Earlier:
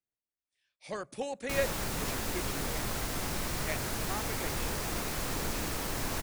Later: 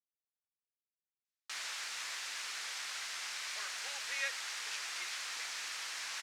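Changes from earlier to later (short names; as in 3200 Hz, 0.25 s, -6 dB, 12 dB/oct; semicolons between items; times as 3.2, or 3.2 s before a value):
speech: entry +2.65 s; master: add Butterworth band-pass 3400 Hz, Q 0.63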